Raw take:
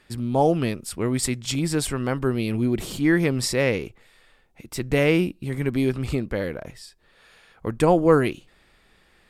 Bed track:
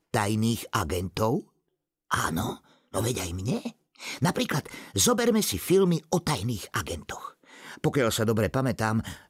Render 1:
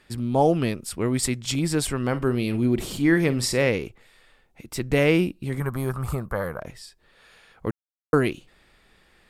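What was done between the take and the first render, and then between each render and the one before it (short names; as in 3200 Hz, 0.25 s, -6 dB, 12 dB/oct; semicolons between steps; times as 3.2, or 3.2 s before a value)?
1.98–3.69 flutter echo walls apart 8.4 m, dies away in 0.2 s; 5.6–6.6 EQ curve 170 Hz 0 dB, 280 Hz -11 dB, 1200 Hz +12 dB, 2400 Hz -12 dB, 4400 Hz -9 dB, 12000 Hz +9 dB; 7.71–8.13 mute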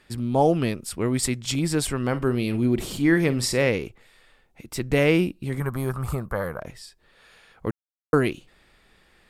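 nothing audible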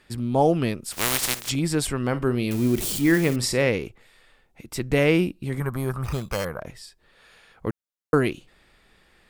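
0.91–1.48 spectral contrast lowered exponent 0.19; 2.51–3.36 switching spikes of -22.5 dBFS; 6.04–6.45 sample-rate reducer 3700 Hz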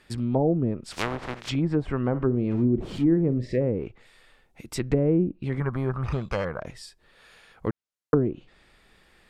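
treble ducked by the level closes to 430 Hz, closed at -17.5 dBFS; 3.38–3.6 spectral gain 670–1600 Hz -20 dB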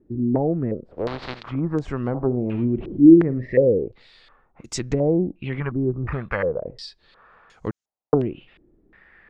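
vibrato 1.8 Hz 32 cents; stepped low-pass 2.8 Hz 330–6600 Hz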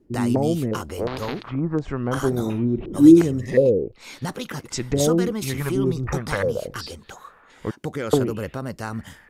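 add bed track -4.5 dB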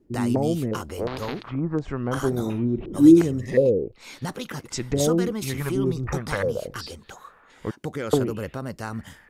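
gain -2 dB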